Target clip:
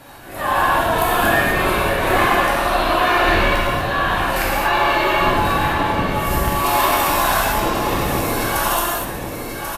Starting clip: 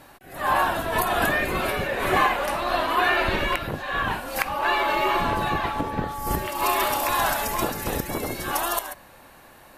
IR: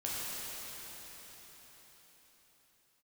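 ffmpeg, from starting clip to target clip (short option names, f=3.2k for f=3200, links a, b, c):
-filter_complex "[0:a]acrossover=split=420[a][b];[b]asoftclip=type=tanh:threshold=-13.5dB[c];[a][c]amix=inputs=2:normalize=0,asettb=1/sr,asplit=3[d][e][f];[d]atrim=end=7.444[g];[e]atrim=start=7.44:end=8.04,asetpts=PTS-STARTPTS,afade=t=in:d=0.004:c=qsin,afade=t=out:st=0.596:d=0.004:c=qsin,lowpass=5.2k[h];[f]atrim=start=8.036[i];[g][h]acrossfade=d=0.004:c1=hsin:c2=qsin[j];[j][i]acrossfade=d=0.004:c1=qsin:c2=hsin,aecho=1:1:1089:0.355[k];[1:a]atrim=start_sample=2205,afade=t=out:st=0.31:d=0.01,atrim=end_sample=14112[l];[k][l]afir=irnorm=-1:irlink=0,asplit=2[m][n];[n]acompressor=threshold=-32dB:ratio=6,volume=-0.5dB[o];[m][o]amix=inputs=2:normalize=0,volume=2.5dB"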